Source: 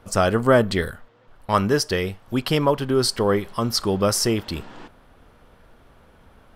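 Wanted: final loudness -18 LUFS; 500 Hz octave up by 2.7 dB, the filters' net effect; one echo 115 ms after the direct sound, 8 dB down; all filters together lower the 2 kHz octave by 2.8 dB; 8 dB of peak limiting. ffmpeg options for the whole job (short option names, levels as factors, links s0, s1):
-af "equalizer=f=500:t=o:g=3.5,equalizer=f=2000:t=o:g=-4,alimiter=limit=0.299:level=0:latency=1,aecho=1:1:115:0.398,volume=1.5"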